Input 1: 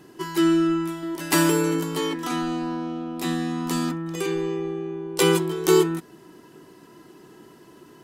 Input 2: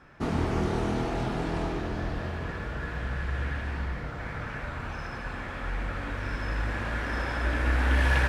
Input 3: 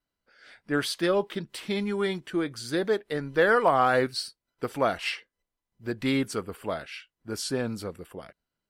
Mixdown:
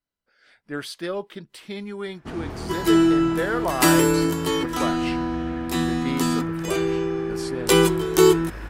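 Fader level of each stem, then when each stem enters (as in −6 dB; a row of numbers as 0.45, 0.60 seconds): +2.5, −5.5, −4.5 decibels; 2.50, 2.05, 0.00 seconds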